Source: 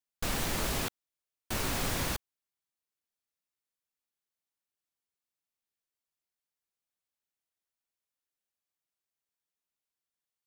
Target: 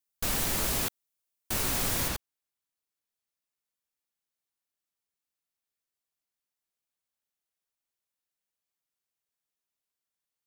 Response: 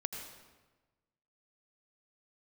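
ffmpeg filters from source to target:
-af "asetnsamples=nb_out_samples=441:pad=0,asendcmd='2.08 highshelf g 2',highshelf=frequency=6700:gain=9.5"

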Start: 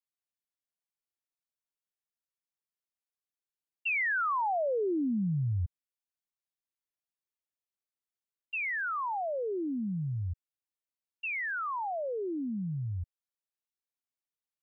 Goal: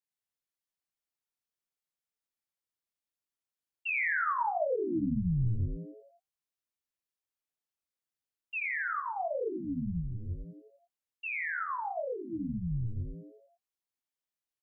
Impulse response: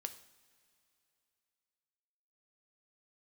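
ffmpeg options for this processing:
-filter_complex "[0:a]flanger=delay=17.5:depth=7.4:speed=1.9,asplit=7[link_01][link_02][link_03][link_04][link_05][link_06][link_07];[link_02]adelay=85,afreqshift=-130,volume=-5.5dB[link_08];[link_03]adelay=170,afreqshift=-260,volume=-11.5dB[link_09];[link_04]adelay=255,afreqshift=-390,volume=-17.5dB[link_10];[link_05]adelay=340,afreqshift=-520,volume=-23.6dB[link_11];[link_06]adelay=425,afreqshift=-650,volume=-29.6dB[link_12];[link_07]adelay=510,afreqshift=-780,volume=-35.6dB[link_13];[link_01][link_08][link_09][link_10][link_11][link_12][link_13]amix=inputs=7:normalize=0,volume=1dB"

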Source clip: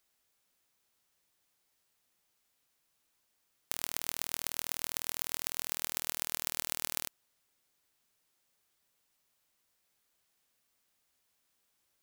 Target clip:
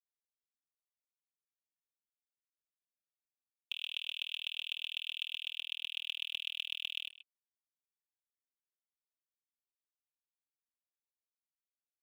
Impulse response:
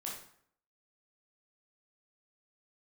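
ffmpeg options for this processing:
-filter_complex "[0:a]afftfilt=real='re*gte(hypot(re,im),0.000631)':imag='im*gte(hypot(re,im),0.000631)':win_size=1024:overlap=0.75,asuperpass=centerf=3000:order=8:qfactor=2.8,aecho=1:1:3.4:0.89,acrusher=bits=5:mode=log:mix=0:aa=0.000001,asplit=2[link_01][link_02];[link_02]adelay=130,highpass=300,lowpass=3400,asoftclip=type=hard:threshold=-37.5dB,volume=-26dB[link_03];[link_01][link_03]amix=inputs=2:normalize=0,areverse,acompressor=mode=upward:threshold=-50dB:ratio=2.5,areverse,volume=7dB"

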